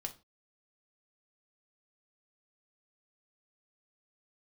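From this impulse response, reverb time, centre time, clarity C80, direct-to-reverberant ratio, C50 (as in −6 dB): 0.30 s, 7 ms, 22.0 dB, 4.0 dB, 15.0 dB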